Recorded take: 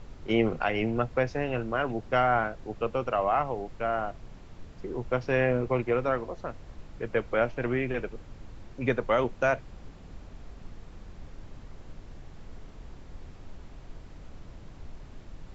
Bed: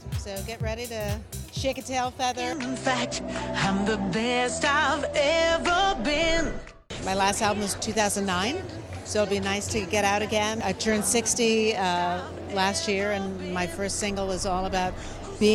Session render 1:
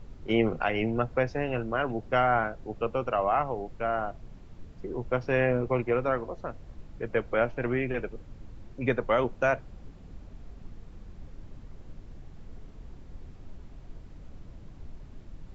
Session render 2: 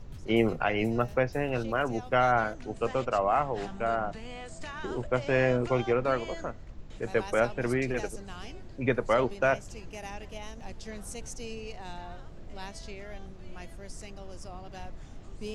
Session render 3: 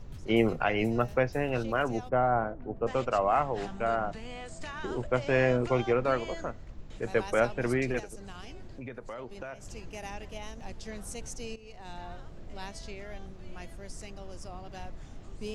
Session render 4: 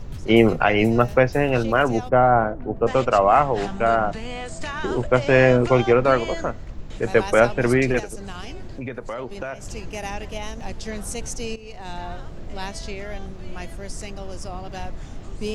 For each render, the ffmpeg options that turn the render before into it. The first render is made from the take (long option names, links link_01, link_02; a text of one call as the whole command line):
ffmpeg -i in.wav -af "afftdn=noise_reduction=6:noise_floor=-48" out.wav
ffmpeg -i in.wav -i bed.wav -filter_complex "[1:a]volume=-18.5dB[link_01];[0:a][link_01]amix=inputs=2:normalize=0" out.wav
ffmpeg -i in.wav -filter_complex "[0:a]asplit=3[link_01][link_02][link_03];[link_01]afade=type=out:start_time=2.08:duration=0.02[link_04];[link_02]lowpass=1000,afade=type=in:start_time=2.08:duration=0.02,afade=type=out:start_time=2.86:duration=0.02[link_05];[link_03]afade=type=in:start_time=2.86:duration=0.02[link_06];[link_04][link_05][link_06]amix=inputs=3:normalize=0,asettb=1/sr,asplit=3[link_07][link_08][link_09];[link_07]atrim=end=7.994[link_10];[link_08]atrim=start=7.99:end=9.65,asetpts=PTS-STARTPTS,afade=type=in:duration=0.004:curve=qsin,afade=type=out:start_time=1.656:duration=0.004:curve=qsin,acompressor=threshold=-38dB:ratio=6:attack=3.2:release=140:knee=1:detection=peak[link_11];[link_09]atrim=start=9.646[link_12];[link_10][link_11]acrossfade=duration=0.004:curve1=hsin:curve2=qsin[link_13];[link_13][link_12]acrossfade=duration=0.004:curve1=qsin:curve2=hsin,asplit=2[link_14][link_15];[link_14]atrim=end=11.56,asetpts=PTS-STARTPTS,afade=type=out:start_time=11.556:duration=0.004:curve=hsin:silence=0.177828[link_16];[link_15]atrim=start=11.56,asetpts=PTS-STARTPTS,afade=type=in:duration=0.48:silence=0.177828[link_17];[link_16][link_17]concat=n=2:v=0:a=1" out.wav
ffmpeg -i in.wav -af "volume=10dB,alimiter=limit=-3dB:level=0:latency=1" out.wav